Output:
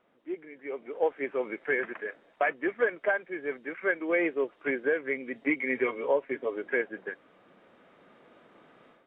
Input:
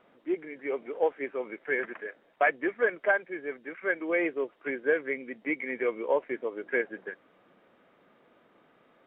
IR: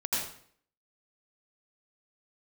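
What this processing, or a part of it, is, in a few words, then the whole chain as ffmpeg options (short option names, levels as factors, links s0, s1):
low-bitrate web radio: -filter_complex "[0:a]asettb=1/sr,asplit=3[s0][s1][s2];[s0]atrim=end=5.354[s3];[s1]atrim=start=5.35:end=6.56,asetpts=PTS-STARTPTS,afade=t=in:d=0.004:c=qsin,afade=t=out:st=1.206:d=0.004:c=qsin,aecho=1:1:7.3:0.75,atrim=end_sample=53361[s4];[s2]atrim=start=6.556[s5];[s3][s4]acrossfade=d=0.004:c1=hsin:c2=qsin[s6];[s6][s5]acrossfade=d=0.004:c1=qsin:c2=hsin,dynaudnorm=f=740:g=3:m=4.73,alimiter=limit=0.376:level=0:latency=1:release=441,volume=0.447" -ar 22050 -c:a aac -b:a 48k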